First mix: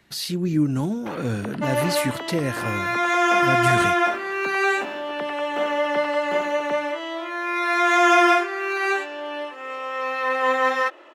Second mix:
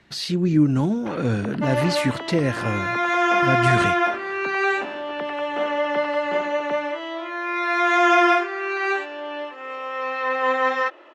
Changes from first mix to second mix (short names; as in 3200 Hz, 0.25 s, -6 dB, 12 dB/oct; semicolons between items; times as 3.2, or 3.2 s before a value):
speech +3.5 dB; second sound: add LPF 8500 Hz 12 dB/oct; master: add air absorption 75 m